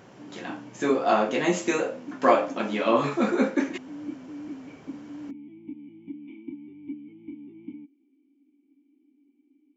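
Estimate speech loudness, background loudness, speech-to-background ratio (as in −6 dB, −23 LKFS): −25.0 LKFS, −41.0 LKFS, 16.0 dB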